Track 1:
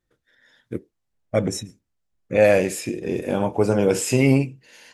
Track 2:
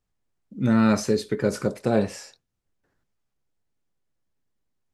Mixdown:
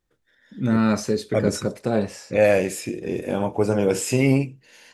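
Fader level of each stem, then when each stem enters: -1.5, -0.5 dB; 0.00, 0.00 s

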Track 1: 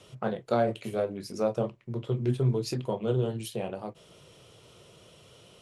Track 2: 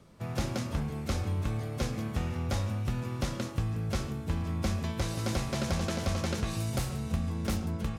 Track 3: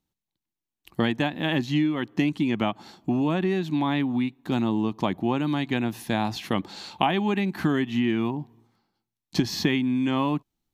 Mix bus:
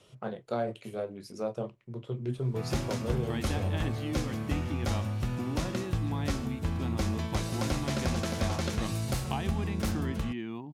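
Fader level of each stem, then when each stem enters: -6.0, 0.0, -13.0 dB; 0.00, 2.35, 2.30 s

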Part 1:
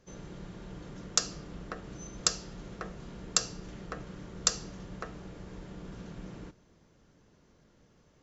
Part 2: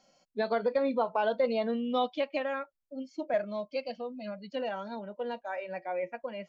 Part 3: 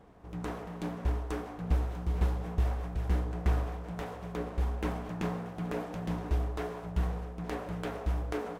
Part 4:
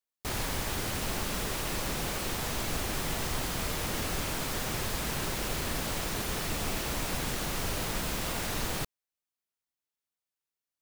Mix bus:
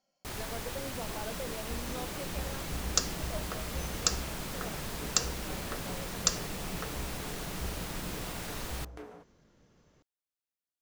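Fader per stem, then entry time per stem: -1.0, -14.0, -11.5, -6.5 dB; 1.80, 0.00, 0.65, 0.00 s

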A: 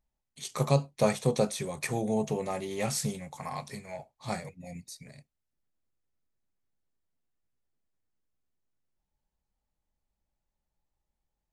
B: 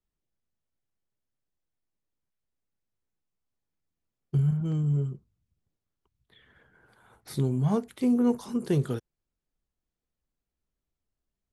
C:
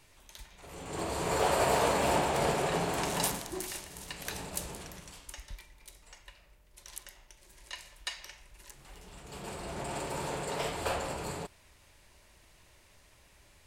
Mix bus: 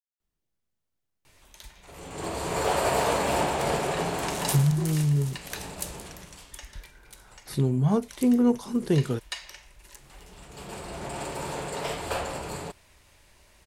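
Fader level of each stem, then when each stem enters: off, +2.5 dB, +2.5 dB; off, 0.20 s, 1.25 s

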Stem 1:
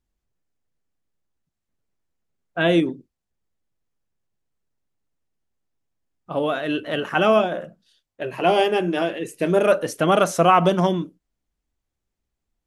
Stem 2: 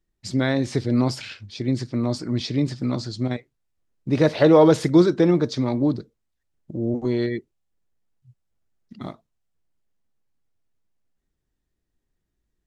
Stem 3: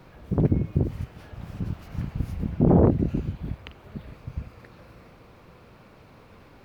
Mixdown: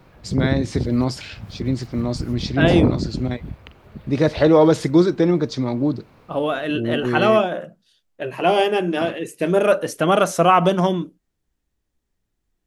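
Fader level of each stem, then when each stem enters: +1.0, +0.5, -0.5 dB; 0.00, 0.00, 0.00 s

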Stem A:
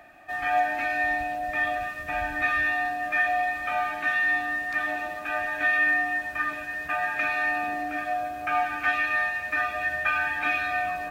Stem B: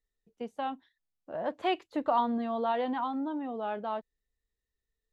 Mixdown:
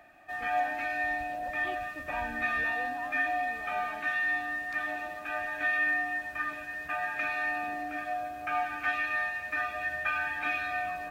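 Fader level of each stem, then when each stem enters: -5.5, -14.5 dB; 0.00, 0.00 s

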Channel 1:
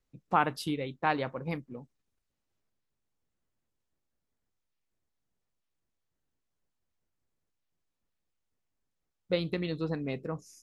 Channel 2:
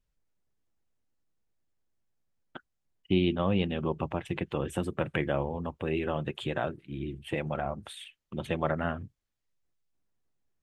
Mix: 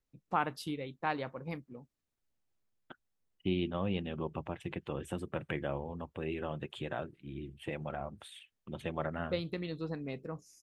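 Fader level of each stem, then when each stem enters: -5.5, -7.0 dB; 0.00, 0.35 s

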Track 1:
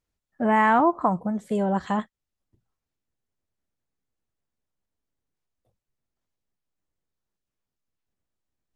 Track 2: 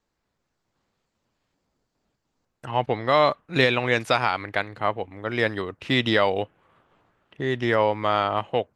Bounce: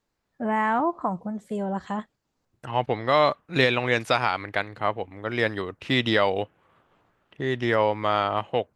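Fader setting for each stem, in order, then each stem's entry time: -4.5, -1.0 dB; 0.00, 0.00 s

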